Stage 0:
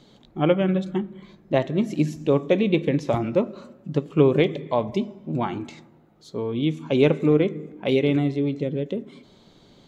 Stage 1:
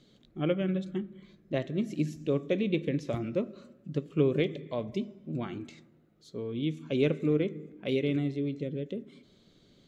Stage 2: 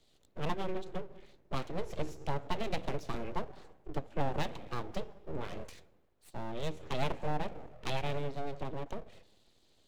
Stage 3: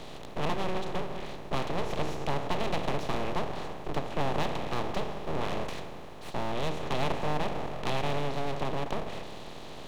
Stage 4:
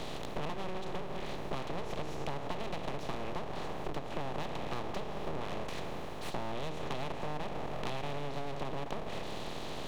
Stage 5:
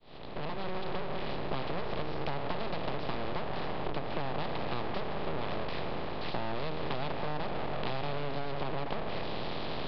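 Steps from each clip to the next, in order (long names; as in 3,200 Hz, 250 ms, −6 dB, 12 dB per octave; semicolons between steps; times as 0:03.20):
parametric band 880 Hz −13 dB 0.62 octaves; level −7.5 dB
downward compressor 2 to 1, threshold −38 dBFS, peak gain reduction 10 dB; full-wave rectification; multiband upward and downward expander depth 40%; level +4 dB
compressor on every frequency bin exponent 0.4
downward compressor 10 to 1, threshold −36 dBFS, peak gain reduction 13.5 dB; level +3.5 dB
fade in at the beginning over 0.78 s; in parallel at −6 dB: wave folding −38.5 dBFS; on the sum: downsampling to 11,025 Hz; level +3 dB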